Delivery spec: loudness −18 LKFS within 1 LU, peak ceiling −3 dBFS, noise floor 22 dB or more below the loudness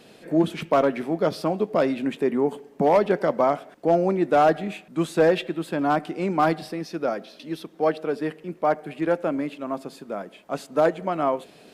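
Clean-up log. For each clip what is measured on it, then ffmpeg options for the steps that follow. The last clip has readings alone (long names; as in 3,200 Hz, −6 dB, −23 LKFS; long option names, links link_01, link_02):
integrated loudness −24.0 LKFS; sample peak −10.5 dBFS; target loudness −18.0 LKFS
→ -af "volume=6dB"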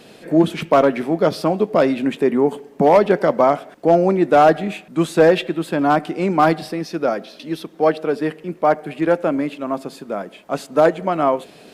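integrated loudness −18.0 LKFS; sample peak −4.5 dBFS; background noise floor −45 dBFS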